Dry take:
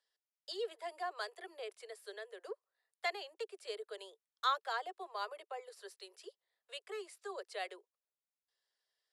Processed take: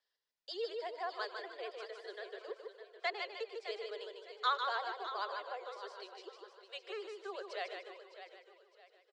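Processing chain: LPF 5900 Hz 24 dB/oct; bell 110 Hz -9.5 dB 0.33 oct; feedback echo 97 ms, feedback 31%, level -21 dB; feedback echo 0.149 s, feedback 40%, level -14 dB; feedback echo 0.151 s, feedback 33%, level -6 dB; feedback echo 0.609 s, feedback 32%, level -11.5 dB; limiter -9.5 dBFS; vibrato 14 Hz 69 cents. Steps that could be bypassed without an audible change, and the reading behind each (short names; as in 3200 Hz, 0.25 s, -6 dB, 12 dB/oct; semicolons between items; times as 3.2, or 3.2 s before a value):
bell 110 Hz: input band starts at 320 Hz; limiter -9.5 dBFS: input peak -22.0 dBFS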